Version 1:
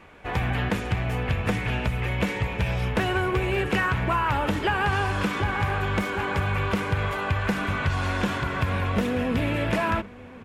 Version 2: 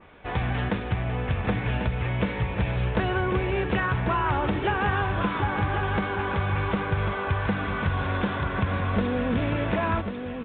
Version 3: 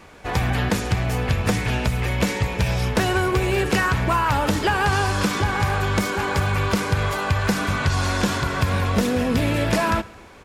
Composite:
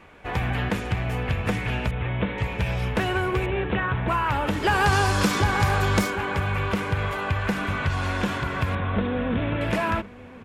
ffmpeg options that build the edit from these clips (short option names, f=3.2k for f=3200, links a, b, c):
-filter_complex "[1:a]asplit=3[a][b][c];[0:a]asplit=5[d][e][f][g][h];[d]atrim=end=1.912[i];[a]atrim=start=1.908:end=2.382[j];[e]atrim=start=2.378:end=3.462[k];[b]atrim=start=3.458:end=4.082[l];[f]atrim=start=4.078:end=4.74[m];[2:a]atrim=start=4.58:end=6.16[n];[g]atrim=start=6:end=8.752[o];[c]atrim=start=8.748:end=9.612[p];[h]atrim=start=9.608[q];[i][j]acrossfade=d=0.004:c1=hsin:c2=hsin[r];[r][k]acrossfade=d=0.004:c1=hsin:c2=hsin[s];[s][l]acrossfade=d=0.004:c1=hsin:c2=hsin[t];[t][m]acrossfade=d=0.004:c1=hsin:c2=hsin[u];[u][n]acrossfade=d=0.16:c1=tri:c2=tri[v];[v][o]acrossfade=d=0.16:c1=tri:c2=tri[w];[w][p]acrossfade=d=0.004:c1=hsin:c2=hsin[x];[x][q]acrossfade=d=0.004:c1=hsin:c2=hsin"